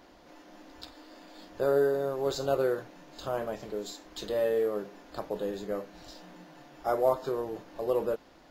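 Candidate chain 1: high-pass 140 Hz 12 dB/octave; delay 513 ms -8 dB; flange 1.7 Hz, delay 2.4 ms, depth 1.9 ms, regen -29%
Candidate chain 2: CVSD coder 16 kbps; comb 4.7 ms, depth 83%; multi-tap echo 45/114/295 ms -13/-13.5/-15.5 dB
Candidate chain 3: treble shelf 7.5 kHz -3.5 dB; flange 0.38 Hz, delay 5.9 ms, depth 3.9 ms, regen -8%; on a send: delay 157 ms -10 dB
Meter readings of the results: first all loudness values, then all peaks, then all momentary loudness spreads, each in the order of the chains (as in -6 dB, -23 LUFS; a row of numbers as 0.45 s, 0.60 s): -34.5 LUFS, -28.0 LUFS, -34.5 LUFS; -16.0 dBFS, -11.0 dBFS, -17.0 dBFS; 19 LU, 17 LU, 21 LU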